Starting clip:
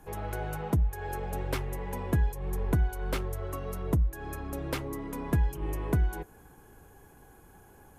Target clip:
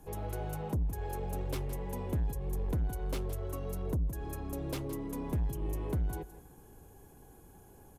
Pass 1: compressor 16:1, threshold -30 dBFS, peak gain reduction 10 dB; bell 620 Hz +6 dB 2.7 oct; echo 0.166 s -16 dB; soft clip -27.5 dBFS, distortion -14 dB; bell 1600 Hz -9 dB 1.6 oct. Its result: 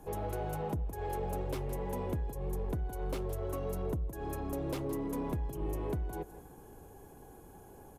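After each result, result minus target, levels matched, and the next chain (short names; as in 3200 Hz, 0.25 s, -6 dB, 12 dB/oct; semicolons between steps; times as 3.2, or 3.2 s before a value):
compressor: peak gain reduction +10 dB; 500 Hz band +4.0 dB
bell 620 Hz +6 dB 2.7 oct; echo 0.166 s -16 dB; soft clip -27.5 dBFS, distortion -8 dB; bell 1600 Hz -9 dB 1.6 oct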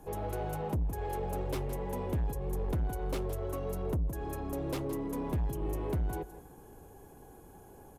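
500 Hz band +3.0 dB
echo 0.166 s -16 dB; soft clip -27.5 dBFS, distortion -9 dB; bell 1600 Hz -9 dB 1.6 oct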